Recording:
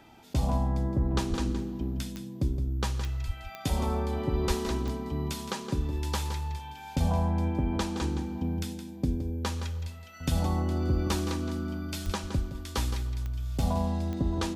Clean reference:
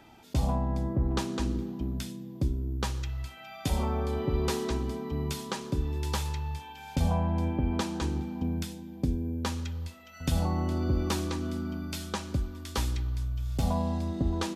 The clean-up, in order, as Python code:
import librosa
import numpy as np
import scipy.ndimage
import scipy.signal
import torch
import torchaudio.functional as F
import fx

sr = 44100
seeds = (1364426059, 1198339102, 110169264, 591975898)

y = fx.fix_declick_ar(x, sr, threshold=10.0)
y = fx.fix_deplosive(y, sr, at_s=(1.29, 3.26, 4.47, 12.05, 12.36))
y = fx.fix_echo_inverse(y, sr, delay_ms=167, level_db=-10.0)